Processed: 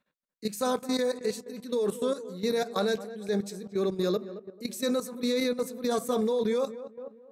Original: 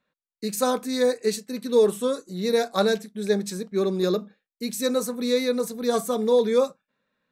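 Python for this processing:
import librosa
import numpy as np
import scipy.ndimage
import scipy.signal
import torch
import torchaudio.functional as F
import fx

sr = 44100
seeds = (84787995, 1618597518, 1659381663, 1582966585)

y = fx.echo_tape(x, sr, ms=221, feedback_pct=60, wet_db=-12.0, lp_hz=1200.0, drive_db=4.0, wow_cents=28)
y = fx.level_steps(y, sr, step_db=13)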